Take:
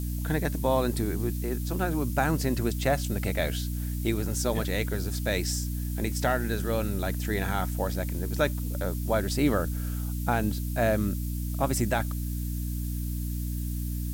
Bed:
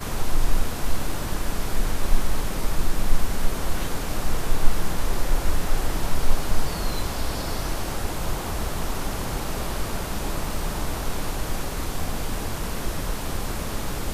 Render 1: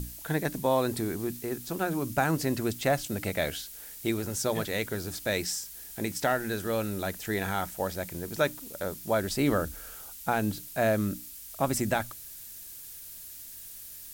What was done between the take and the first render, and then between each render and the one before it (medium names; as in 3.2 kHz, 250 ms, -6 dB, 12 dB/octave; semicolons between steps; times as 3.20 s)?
hum notches 60/120/180/240/300 Hz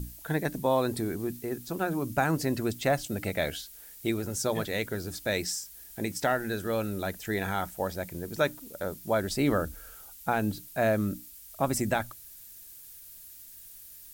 noise reduction 6 dB, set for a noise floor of -45 dBFS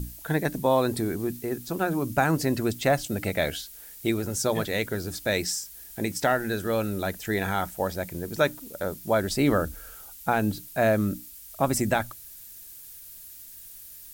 trim +3.5 dB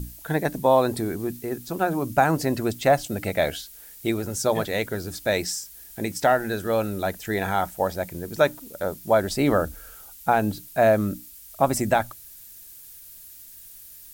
dynamic bell 740 Hz, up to +6 dB, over -35 dBFS, Q 1.2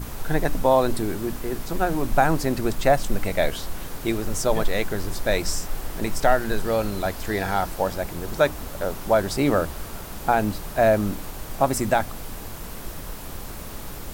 add bed -7.5 dB